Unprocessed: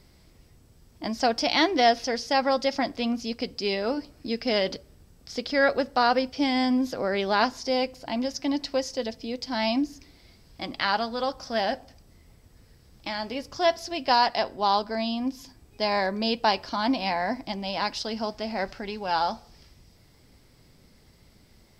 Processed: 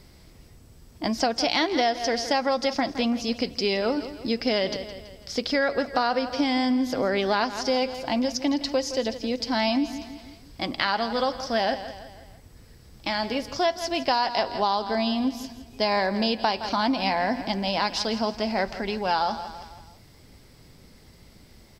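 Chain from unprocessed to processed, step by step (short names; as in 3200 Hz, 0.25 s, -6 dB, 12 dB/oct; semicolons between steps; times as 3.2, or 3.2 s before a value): on a send: feedback echo 0.165 s, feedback 48%, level -15 dB; on the sum: compressor, threshold -25 dBFS, peak gain reduction 9.5 dB; gain +5 dB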